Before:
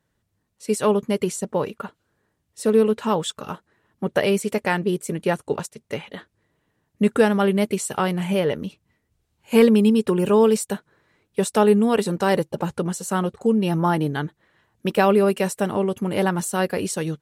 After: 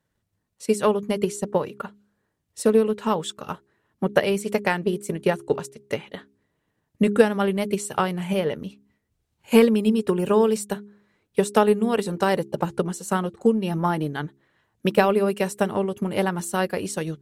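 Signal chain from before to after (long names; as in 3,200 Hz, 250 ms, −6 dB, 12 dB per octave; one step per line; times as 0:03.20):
transient designer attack +7 dB, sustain 0 dB
hum removal 68.28 Hz, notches 6
level −4 dB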